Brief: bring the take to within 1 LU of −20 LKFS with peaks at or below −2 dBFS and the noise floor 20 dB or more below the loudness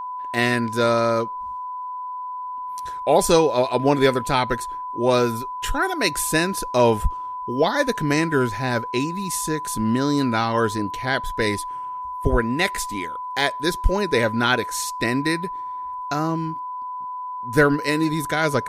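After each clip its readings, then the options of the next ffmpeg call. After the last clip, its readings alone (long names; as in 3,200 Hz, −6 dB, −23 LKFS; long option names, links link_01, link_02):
interfering tone 1,000 Hz; level of the tone −28 dBFS; integrated loudness −22.5 LKFS; sample peak −3.5 dBFS; target loudness −20.0 LKFS
→ -af "bandreject=frequency=1000:width=30"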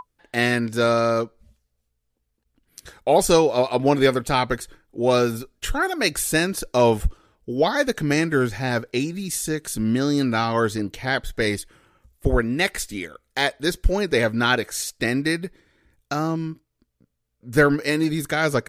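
interfering tone none found; integrated loudness −22.0 LKFS; sample peak −3.0 dBFS; target loudness −20.0 LKFS
→ -af "volume=2dB,alimiter=limit=-2dB:level=0:latency=1"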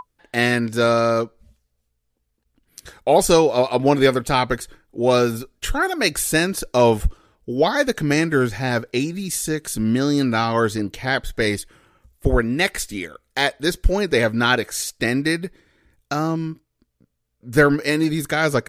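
integrated loudness −20.0 LKFS; sample peak −2.0 dBFS; background noise floor −73 dBFS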